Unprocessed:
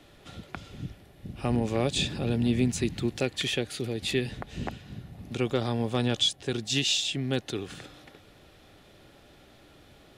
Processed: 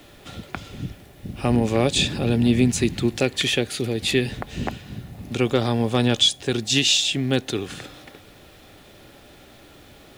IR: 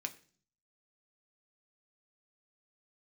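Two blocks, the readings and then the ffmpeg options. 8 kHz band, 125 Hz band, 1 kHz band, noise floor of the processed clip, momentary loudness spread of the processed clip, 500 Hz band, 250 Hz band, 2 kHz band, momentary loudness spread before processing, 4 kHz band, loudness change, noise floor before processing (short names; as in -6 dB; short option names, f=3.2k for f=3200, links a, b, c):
+8.0 dB, +6.0 dB, +7.0 dB, -49 dBFS, 19 LU, +7.0 dB, +7.5 dB, +7.5 dB, 18 LU, +7.5 dB, +7.5 dB, -56 dBFS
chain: -filter_complex "[0:a]acrusher=bits=10:mix=0:aa=0.000001,asplit=2[a][b];[1:a]atrim=start_sample=2205,highshelf=f=9.4k:g=10[c];[b][c]afir=irnorm=-1:irlink=0,volume=-12.5dB[d];[a][d]amix=inputs=2:normalize=0,volume=6dB"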